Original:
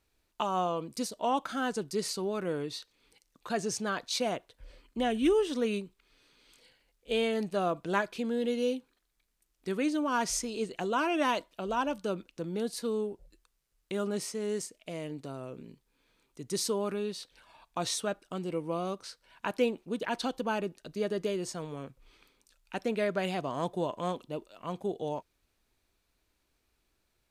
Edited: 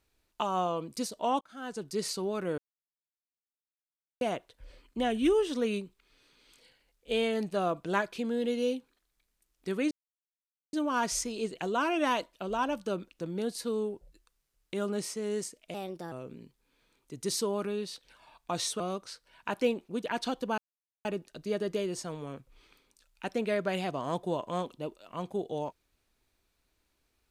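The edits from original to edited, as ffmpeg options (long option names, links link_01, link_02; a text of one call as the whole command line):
ffmpeg -i in.wav -filter_complex "[0:a]asplit=9[link_01][link_02][link_03][link_04][link_05][link_06][link_07][link_08][link_09];[link_01]atrim=end=1.41,asetpts=PTS-STARTPTS,afade=type=out:start_time=1.406:duration=0.004:curve=hsin[link_10];[link_02]atrim=start=1.41:end=2.58,asetpts=PTS-STARTPTS,afade=type=in:duration=0.61,afade=type=out:start_time=1.166:duration=0.004:curve=hsin[link_11];[link_03]atrim=start=2.58:end=4.21,asetpts=PTS-STARTPTS,volume=0[link_12];[link_04]atrim=start=4.21:end=9.91,asetpts=PTS-STARTPTS,afade=type=in:duration=0.004:curve=hsin,afade=type=out:start_time=5.696:duration=0.004:curve=hsin,apad=pad_dur=0.82[link_13];[link_05]atrim=start=9.91:end=14.924,asetpts=PTS-STARTPTS,afade=type=in:duration=0.004:curve=hsin[link_14];[link_06]atrim=start=14.92:end=15.39,asetpts=PTS-STARTPTS,asetrate=54684,aresample=44100,atrim=end_sample=16715,asetpts=PTS-STARTPTS[link_15];[link_07]atrim=start=15.386:end=18.072[link_16];[link_08]atrim=start=18.768:end=20.55,asetpts=PTS-STARTPTS,afade=type=out:start_time=1.778:duration=0.004:curve=hsin,apad=pad_dur=0.47[link_17];[link_09]atrim=start=20.55,asetpts=PTS-STARTPTS,afade=type=in:duration=0.004:curve=hsin[link_18];[link_10][link_11][link_12][link_13][link_14]concat=n=5:v=0:a=1[link_19];[link_19][link_15]acrossfade=duration=0.004:curve1=hsin:curve2=hsin[link_20];[link_20][link_16]acrossfade=duration=0.004:curve1=hsin:curve2=hsin[link_21];[link_17][link_18]concat=n=2:v=0:a=1[link_22];[link_21][link_22]acrossfade=duration=0.004:curve1=hsin:curve2=hsin" out.wav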